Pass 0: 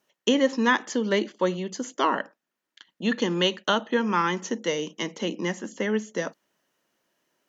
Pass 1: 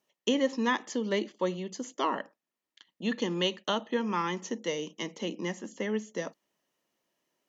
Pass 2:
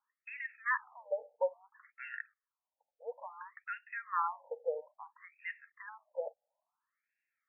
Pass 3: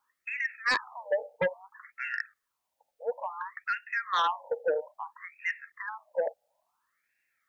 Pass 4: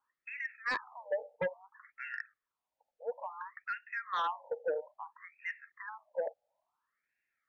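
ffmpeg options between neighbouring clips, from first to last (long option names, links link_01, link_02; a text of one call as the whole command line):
ffmpeg -i in.wav -af "equalizer=frequency=1500:width=5.9:gain=-9,volume=-5.5dB" out.wav
ffmpeg -i in.wav -af "afftfilt=real='re*between(b*sr/1024,610*pow(2000/610,0.5+0.5*sin(2*PI*0.59*pts/sr))/1.41,610*pow(2000/610,0.5+0.5*sin(2*PI*0.59*pts/sr))*1.41)':imag='im*between(b*sr/1024,610*pow(2000/610,0.5+0.5*sin(2*PI*0.59*pts/sr))/1.41,610*pow(2000/610,0.5+0.5*sin(2*PI*0.59*pts/sr))*1.41)':win_size=1024:overlap=0.75" out.wav
ffmpeg -i in.wav -af "aeval=exprs='0.0944*sin(PI/2*2.51*val(0)/0.0944)':channel_layout=same,volume=-1dB" out.wav
ffmpeg -i in.wav -af "lowpass=frequency=2400:poles=1,volume=-5.5dB" out.wav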